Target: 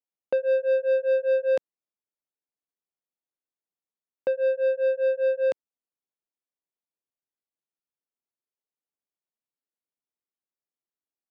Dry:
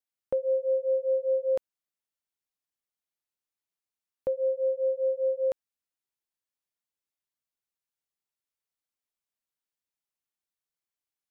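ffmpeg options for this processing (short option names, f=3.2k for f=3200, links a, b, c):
-af "highpass=230,adynamicsmooth=sensitivity=1.5:basefreq=650,crystalizer=i=5.5:c=0,volume=3.5dB"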